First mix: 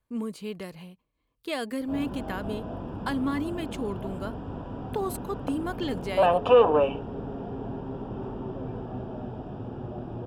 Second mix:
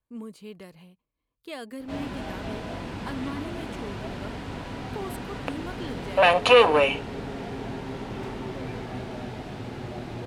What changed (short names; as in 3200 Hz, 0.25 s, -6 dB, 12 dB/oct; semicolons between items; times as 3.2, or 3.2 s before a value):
speech -6.5 dB; background: remove running mean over 21 samples